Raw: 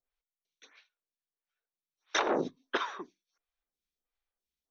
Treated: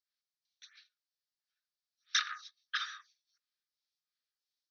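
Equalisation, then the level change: rippled Chebyshev high-pass 1200 Hz, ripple 6 dB; synth low-pass 5000 Hz, resonance Q 2.6; 0.0 dB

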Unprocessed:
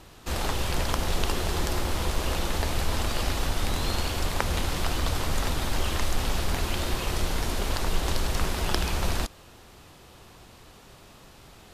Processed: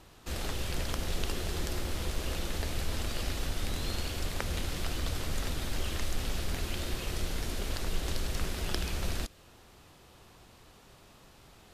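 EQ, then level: dynamic EQ 940 Hz, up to -7 dB, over -50 dBFS, Q 1.6; -6.0 dB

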